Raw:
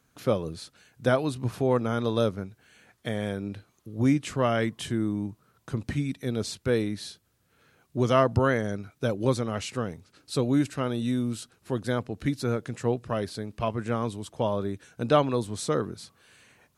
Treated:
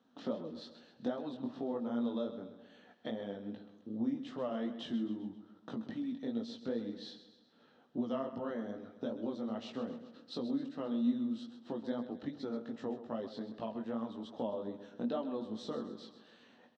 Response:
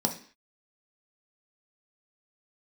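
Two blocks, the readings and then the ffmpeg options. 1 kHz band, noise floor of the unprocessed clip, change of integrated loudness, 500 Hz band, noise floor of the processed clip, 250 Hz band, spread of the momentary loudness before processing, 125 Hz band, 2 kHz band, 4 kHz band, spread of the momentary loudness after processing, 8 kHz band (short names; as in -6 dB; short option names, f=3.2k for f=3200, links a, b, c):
-15.5 dB, -69 dBFS, -11.5 dB, -13.0 dB, -66 dBFS, -7.5 dB, 13 LU, -23.0 dB, -19.5 dB, -12.0 dB, 10 LU, under -25 dB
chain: -filter_complex "[0:a]equalizer=f=2.2k:w=5.4:g=-12.5,acompressor=threshold=-36dB:ratio=5,flanger=delay=17:depth=5.3:speed=2.5,highpass=240,equalizer=f=240:t=q:w=4:g=6,equalizer=f=380:t=q:w=4:g=-4,equalizer=f=1.5k:t=q:w=4:g=-8,equalizer=f=2.5k:t=q:w=4:g=-6,lowpass=f=4k:w=0.5412,lowpass=f=4k:w=1.3066,aecho=1:1:131|262|393|524|655:0.251|0.123|0.0603|0.0296|0.0145,asplit=2[a][b];[1:a]atrim=start_sample=2205[c];[b][c]afir=irnorm=-1:irlink=0,volume=-20.5dB[d];[a][d]amix=inputs=2:normalize=0,volume=2dB"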